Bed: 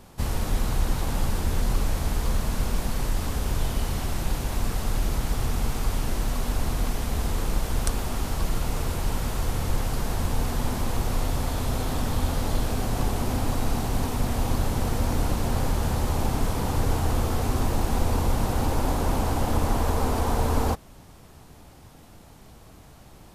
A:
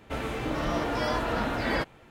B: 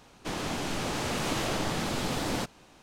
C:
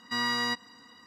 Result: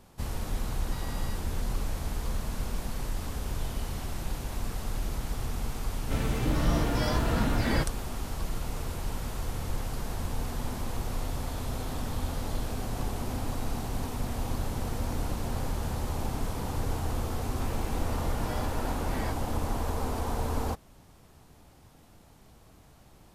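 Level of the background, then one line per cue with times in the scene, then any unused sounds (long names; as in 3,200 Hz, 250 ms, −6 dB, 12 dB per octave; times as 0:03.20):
bed −7 dB
0:00.81: mix in C −15.5 dB + brickwall limiter −25 dBFS
0:06.00: mix in A −4 dB + bass and treble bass +12 dB, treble +8 dB
0:17.49: mix in A −11.5 dB
not used: B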